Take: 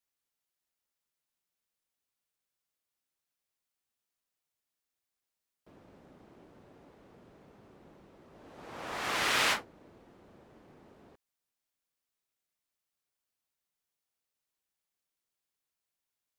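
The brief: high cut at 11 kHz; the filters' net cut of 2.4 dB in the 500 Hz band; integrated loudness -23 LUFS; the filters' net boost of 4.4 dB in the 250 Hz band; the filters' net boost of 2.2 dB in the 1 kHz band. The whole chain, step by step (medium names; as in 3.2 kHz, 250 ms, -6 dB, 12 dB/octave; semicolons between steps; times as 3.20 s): low-pass 11 kHz; peaking EQ 250 Hz +7.5 dB; peaking EQ 500 Hz -6.5 dB; peaking EQ 1 kHz +4 dB; trim +6.5 dB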